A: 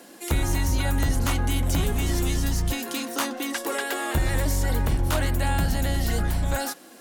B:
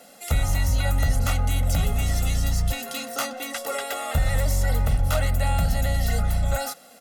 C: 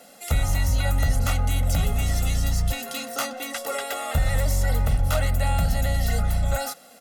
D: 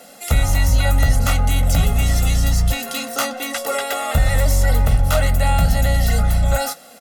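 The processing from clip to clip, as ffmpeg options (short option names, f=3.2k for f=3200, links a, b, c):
-af "aecho=1:1:1.5:0.93,volume=-3dB"
-af anull
-filter_complex "[0:a]asplit=2[a][b];[b]adelay=18,volume=-13.5dB[c];[a][c]amix=inputs=2:normalize=0,volume=6dB"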